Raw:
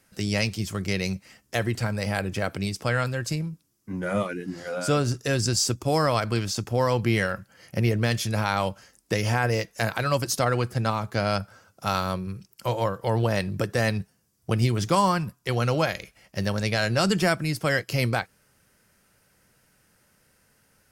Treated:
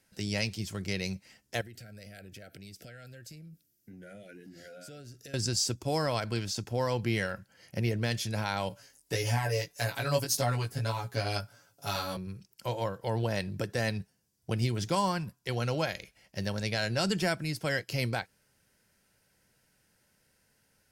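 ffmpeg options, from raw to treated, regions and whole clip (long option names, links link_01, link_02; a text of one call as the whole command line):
ffmpeg -i in.wav -filter_complex "[0:a]asettb=1/sr,asplit=3[link_01][link_02][link_03];[link_01]atrim=end=1.614[link_04];[link_02]atrim=start=1.61:end=5.34,asetpts=PTS-STARTPTS,afade=type=in:duration=0.004:curve=qsin,afade=type=out:start_time=3.726:duration=0.004:curve=qsin,asuperstop=centerf=1000:order=20:qfactor=1.8,equalizer=frequency=14000:width_type=o:width=0.45:gain=12.5,acompressor=threshold=-39dB:ratio=6:attack=3.2:release=140:knee=1:detection=peak[link_05];[link_03]atrim=start=5.336[link_06];[link_04][link_05]acrossfade=duration=0.004:curve1=hsin:curve2=qsin[link_07];[link_07][link_06]acrossfade=duration=0.004:curve1=qsin:curve2=hsin,asettb=1/sr,asplit=3[link_08][link_09][link_10];[link_08]atrim=end=8.694[link_11];[link_09]atrim=start=8.69:end=12.17,asetpts=PTS-STARTPTS,afade=type=in:duration=0.004:curve=qsin,afade=type=out:start_time=3.476:duration=0.004:curve=qsin,highshelf=frequency=8800:gain=11,aecho=1:1:7.1:0.99,atrim=end_sample=153468,flanger=delay=16.5:depth=3.2:speed=1.7[link_12];[link_10]atrim=start=12.166[link_13];[link_11][link_12]acrossfade=duration=0.004:curve1=hsin:curve2=qsin[link_14];[link_14][link_13]acrossfade=duration=0.004:curve1=qsin:curve2=hsin,equalizer=frequency=4200:width=1.1:gain=3,bandreject=frequency=1200:width=5.9,volume=-7dB" out.wav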